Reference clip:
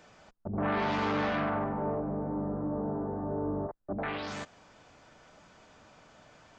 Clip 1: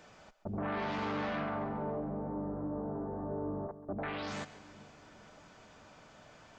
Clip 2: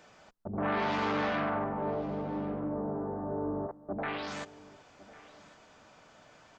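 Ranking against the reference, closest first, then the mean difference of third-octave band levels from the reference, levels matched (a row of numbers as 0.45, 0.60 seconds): 2, 1; 2.0, 3.0 decibels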